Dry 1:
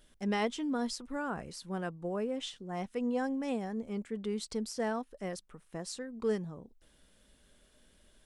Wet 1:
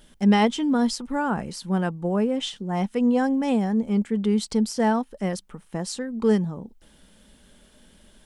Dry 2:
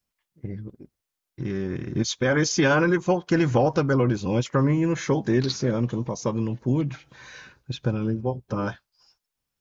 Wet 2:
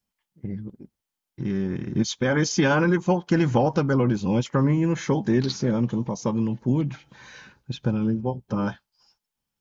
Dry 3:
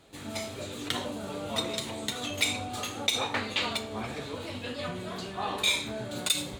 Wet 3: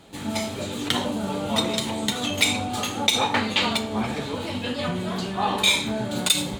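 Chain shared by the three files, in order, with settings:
small resonant body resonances 200/860/3100 Hz, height 7 dB, ringing for 35 ms; normalise loudness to -24 LUFS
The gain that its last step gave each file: +9.0 dB, -1.5 dB, +6.5 dB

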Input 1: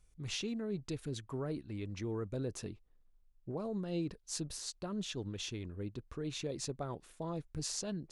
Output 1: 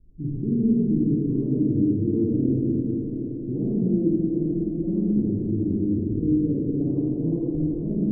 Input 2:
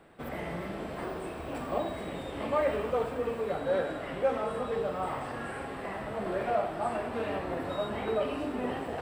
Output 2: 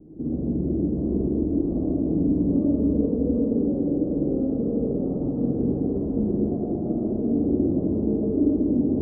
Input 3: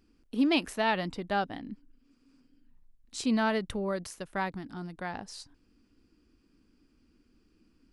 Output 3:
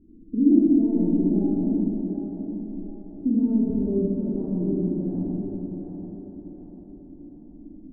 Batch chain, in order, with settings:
CVSD coder 64 kbps; bass shelf 180 Hz +6.5 dB; compression 2.5:1, threshold -37 dBFS; four-pole ladder low-pass 340 Hz, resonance 60%; wow and flutter 23 cents; thinning echo 737 ms, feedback 50%, high-pass 260 Hz, level -6 dB; Schroeder reverb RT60 3 s, DRR -8 dB; normalise loudness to -24 LUFS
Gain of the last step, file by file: +16.0 dB, +15.5 dB, +14.5 dB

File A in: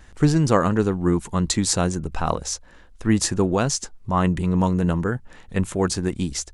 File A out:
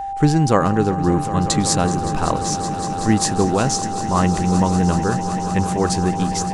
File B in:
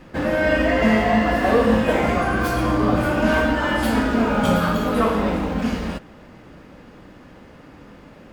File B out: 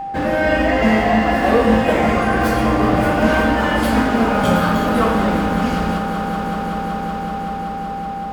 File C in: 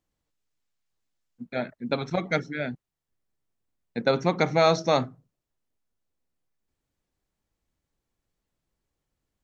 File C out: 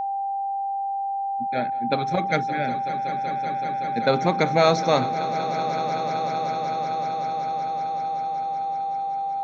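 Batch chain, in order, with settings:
echo with a slow build-up 189 ms, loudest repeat 5, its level -15 dB; whistle 790 Hz -26 dBFS; trim +2 dB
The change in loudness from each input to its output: +3.5 LU, +2.0 LU, +1.5 LU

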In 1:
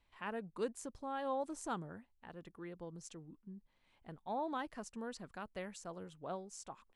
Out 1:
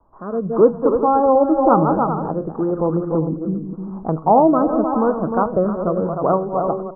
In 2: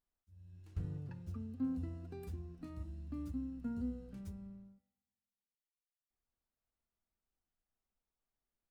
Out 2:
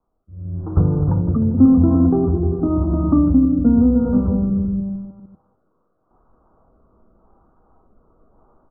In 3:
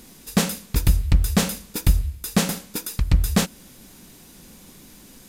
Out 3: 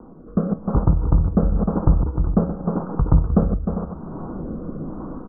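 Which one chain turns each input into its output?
chunks repeated in reverse 150 ms, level -9 dB; steep low-pass 1.3 kHz 72 dB/octave; bass shelf 190 Hz -6.5 dB; level rider gain up to 16.5 dB; multi-tap echo 305/397 ms -8.5/-13 dB; rotary cabinet horn 0.9 Hz; feedback comb 160 Hz, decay 0.29 s, harmonics all, mix 50%; three bands compressed up and down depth 40%; peak normalisation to -2 dBFS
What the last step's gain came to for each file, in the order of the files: +18.0 dB, +19.5 dB, +5.5 dB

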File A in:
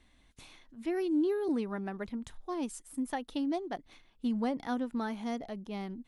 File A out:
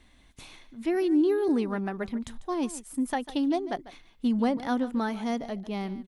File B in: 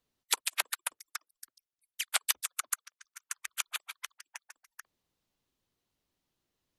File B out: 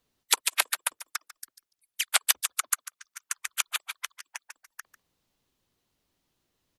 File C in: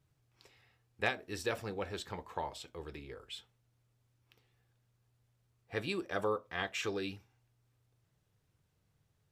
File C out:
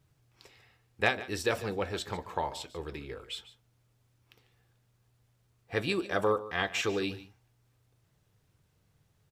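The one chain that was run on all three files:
delay 146 ms -16 dB; trim +6 dB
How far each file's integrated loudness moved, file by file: +6.0 LU, +6.0 LU, +6.0 LU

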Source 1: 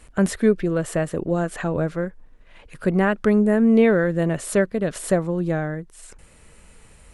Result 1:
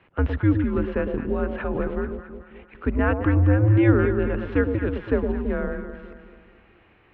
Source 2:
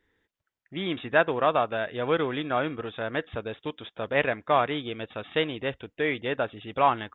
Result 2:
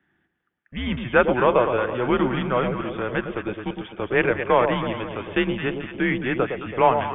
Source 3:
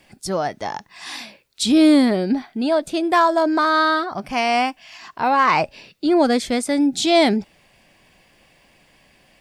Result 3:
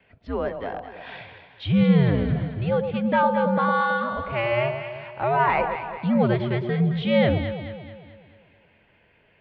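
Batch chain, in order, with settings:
echo whose repeats swap between lows and highs 109 ms, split 1 kHz, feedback 69%, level -5.5 dB; mistuned SSB -120 Hz 170–3200 Hz; normalise loudness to -23 LUFS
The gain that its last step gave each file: -2.0 dB, +4.0 dB, -5.0 dB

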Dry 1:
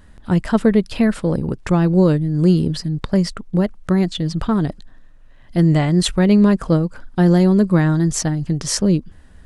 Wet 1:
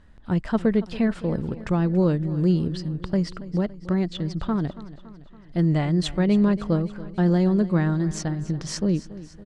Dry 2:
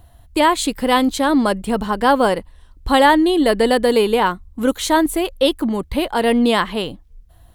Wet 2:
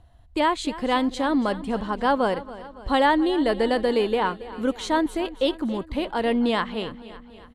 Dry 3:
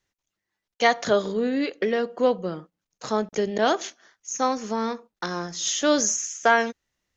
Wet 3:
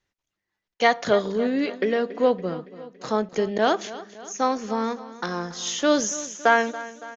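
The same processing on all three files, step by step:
distance through air 75 m; feedback delay 281 ms, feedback 57%, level -16.5 dB; normalise loudness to -24 LUFS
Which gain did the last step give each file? -6.5 dB, -6.5 dB, +1.0 dB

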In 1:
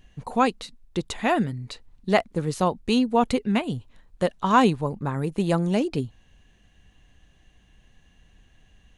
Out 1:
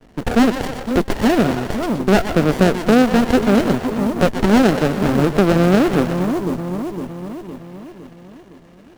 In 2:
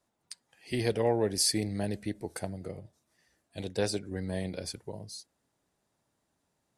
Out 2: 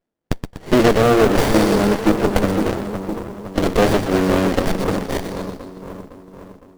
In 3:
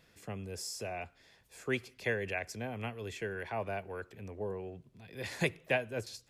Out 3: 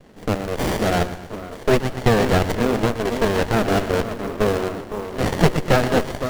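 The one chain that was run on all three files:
in parallel at -5 dB: word length cut 6-bit, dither none; on the sum: peaking EQ 220 Hz +12.5 dB 1.8 oct; valve stage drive 12 dB, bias 0.65; half-wave rectifier; gate with hold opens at -57 dBFS; frequency weighting A; on a send: two-band feedback delay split 710 Hz, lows 510 ms, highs 122 ms, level -7 dB; on the sum: compression 2:1, threshold -34 dBFS; modulation noise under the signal 21 dB; sliding maximum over 33 samples; peak normalisation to -1.5 dBFS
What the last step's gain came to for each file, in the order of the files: +20.0 dB, +24.5 dB, +23.5 dB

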